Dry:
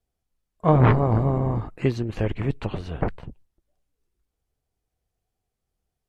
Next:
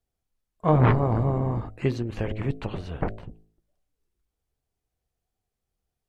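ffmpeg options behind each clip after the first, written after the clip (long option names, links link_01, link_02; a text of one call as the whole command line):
ffmpeg -i in.wav -af "bandreject=frequency=53.83:width_type=h:width=4,bandreject=frequency=107.66:width_type=h:width=4,bandreject=frequency=161.49:width_type=h:width=4,bandreject=frequency=215.32:width_type=h:width=4,bandreject=frequency=269.15:width_type=h:width=4,bandreject=frequency=322.98:width_type=h:width=4,bandreject=frequency=376.81:width_type=h:width=4,bandreject=frequency=430.64:width_type=h:width=4,bandreject=frequency=484.47:width_type=h:width=4,bandreject=frequency=538.3:width_type=h:width=4,bandreject=frequency=592.13:width_type=h:width=4,bandreject=frequency=645.96:width_type=h:width=4,bandreject=frequency=699.79:width_type=h:width=4,bandreject=frequency=753.62:width_type=h:width=4,volume=-2dB" out.wav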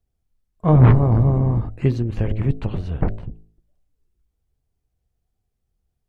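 ffmpeg -i in.wav -af "lowshelf=frequency=260:gain=12,volume=-1dB" out.wav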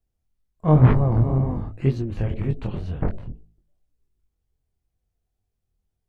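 ffmpeg -i in.wav -af "flanger=delay=19.5:depth=6.7:speed=2" out.wav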